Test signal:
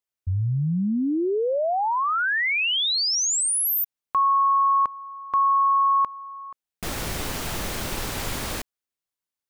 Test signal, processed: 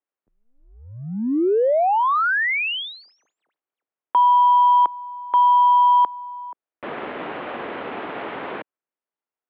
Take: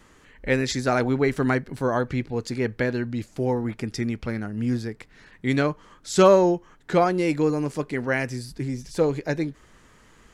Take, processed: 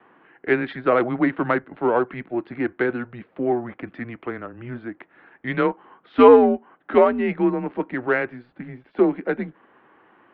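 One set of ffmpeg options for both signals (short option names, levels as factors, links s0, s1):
-af "aemphasis=mode=reproduction:type=75fm,adynamicsmooth=sensitivity=1.5:basefreq=2600,highpass=f=410:t=q:w=0.5412,highpass=f=410:t=q:w=1.307,lowpass=f=3500:t=q:w=0.5176,lowpass=f=3500:t=q:w=0.7071,lowpass=f=3500:t=q:w=1.932,afreqshift=-120,volume=1.88"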